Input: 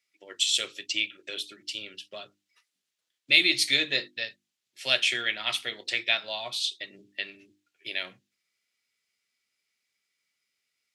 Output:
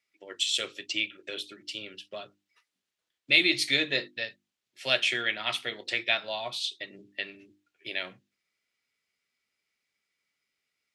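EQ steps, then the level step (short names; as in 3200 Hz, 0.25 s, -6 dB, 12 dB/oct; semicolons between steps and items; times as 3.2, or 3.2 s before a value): high shelf 2700 Hz -9 dB; +3.0 dB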